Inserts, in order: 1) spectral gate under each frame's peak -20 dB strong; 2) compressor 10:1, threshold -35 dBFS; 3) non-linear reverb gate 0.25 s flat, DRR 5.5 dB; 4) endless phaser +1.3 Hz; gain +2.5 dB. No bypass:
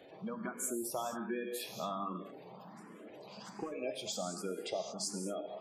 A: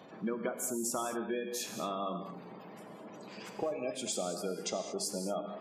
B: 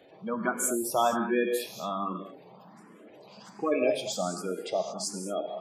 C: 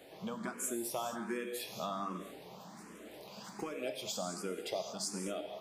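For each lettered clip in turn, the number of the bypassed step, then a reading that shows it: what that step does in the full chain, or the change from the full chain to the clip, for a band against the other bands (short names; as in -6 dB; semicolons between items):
4, loudness change +3.0 LU; 2, mean gain reduction 5.5 dB; 1, 2 kHz band +2.0 dB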